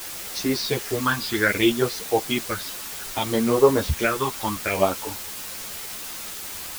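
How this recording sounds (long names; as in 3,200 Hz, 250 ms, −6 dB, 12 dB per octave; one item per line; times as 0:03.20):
phaser sweep stages 6, 0.63 Hz, lowest notch 530–3,100 Hz
a quantiser's noise floor 6 bits, dither triangular
a shimmering, thickened sound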